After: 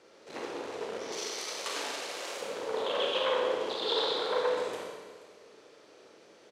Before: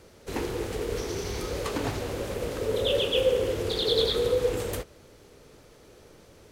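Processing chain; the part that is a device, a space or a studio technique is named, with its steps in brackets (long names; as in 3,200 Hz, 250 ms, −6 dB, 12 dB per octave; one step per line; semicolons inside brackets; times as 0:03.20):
public-address speaker with an overloaded transformer (saturating transformer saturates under 1,400 Hz; band-pass filter 350–6,000 Hz)
0:01.12–0:02.41: spectral tilt +4 dB per octave
single-tap delay 481 ms −19.5 dB
four-comb reverb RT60 1.3 s, combs from 28 ms, DRR −1.5 dB
level −4 dB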